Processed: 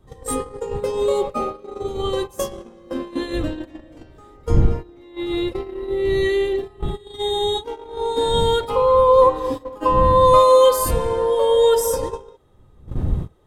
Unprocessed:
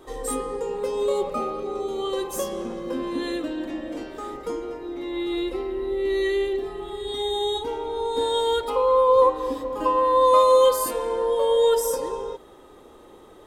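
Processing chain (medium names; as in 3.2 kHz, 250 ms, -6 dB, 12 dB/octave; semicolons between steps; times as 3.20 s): wind noise 98 Hz -31 dBFS; gate -27 dBFS, range -17 dB; trim +4 dB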